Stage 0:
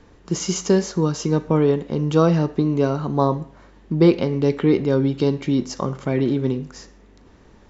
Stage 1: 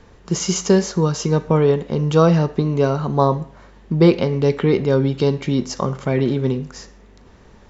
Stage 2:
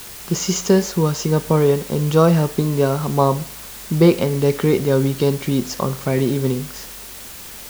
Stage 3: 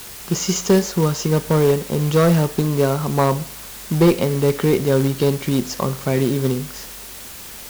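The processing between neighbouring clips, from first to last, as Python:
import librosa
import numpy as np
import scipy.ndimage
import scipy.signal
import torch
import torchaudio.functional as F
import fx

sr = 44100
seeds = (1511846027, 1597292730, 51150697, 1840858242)

y1 = fx.peak_eq(x, sr, hz=300.0, db=-7.5, octaves=0.32)
y1 = F.gain(torch.from_numpy(y1), 3.5).numpy()
y2 = fx.quant_dither(y1, sr, seeds[0], bits=6, dither='triangular')
y3 = fx.clip_asym(y2, sr, top_db=-10.0, bottom_db=-6.0)
y3 = fx.quant_float(y3, sr, bits=2)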